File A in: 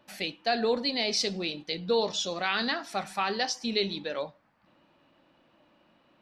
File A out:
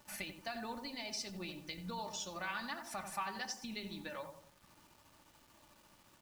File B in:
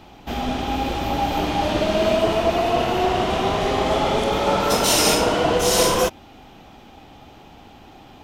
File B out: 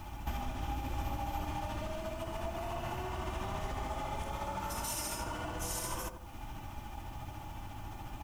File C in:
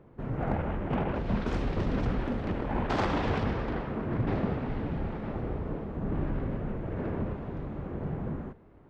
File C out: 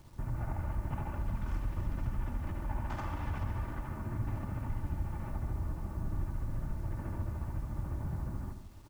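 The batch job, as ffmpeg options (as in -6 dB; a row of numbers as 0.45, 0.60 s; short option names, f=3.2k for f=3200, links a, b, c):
-filter_complex "[0:a]tremolo=f=14:d=0.34,alimiter=limit=-14dB:level=0:latency=1:release=82,aecho=1:1:3.4:0.54,aresample=32000,aresample=44100,acompressor=threshold=-37dB:ratio=4,equalizer=f=125:t=o:w=1:g=6,equalizer=f=250:t=o:w=1:g=-11,equalizer=f=500:t=o:w=1:g=-12,equalizer=f=1k:t=o:w=1:g=5,equalizer=f=4k:t=o:w=1:g=-11,asplit=2[a][b];[b]adelay=89,lowpass=f=990:p=1,volume=-6dB,asplit=2[c][d];[d]adelay=89,lowpass=f=990:p=1,volume=0.48,asplit=2[e][f];[f]adelay=89,lowpass=f=990:p=1,volume=0.48,asplit=2[g][h];[h]adelay=89,lowpass=f=990:p=1,volume=0.48,asplit=2[i][j];[j]adelay=89,lowpass=f=990:p=1,volume=0.48,asplit=2[k][l];[l]adelay=89,lowpass=f=990:p=1,volume=0.48[m];[c][e][g][i][k][m]amix=inputs=6:normalize=0[n];[a][n]amix=inputs=2:normalize=0,acrusher=bits=10:mix=0:aa=0.000001,equalizer=f=1.4k:t=o:w=2.8:g=-6.5,volume=5.5dB"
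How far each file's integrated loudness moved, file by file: -13.5, -19.5, -6.0 LU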